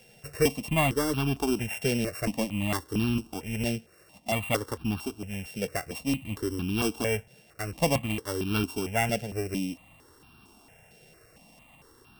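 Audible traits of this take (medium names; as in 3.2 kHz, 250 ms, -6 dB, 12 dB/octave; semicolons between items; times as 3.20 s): a buzz of ramps at a fixed pitch in blocks of 16 samples; notches that jump at a steady rate 4.4 Hz 300–2000 Hz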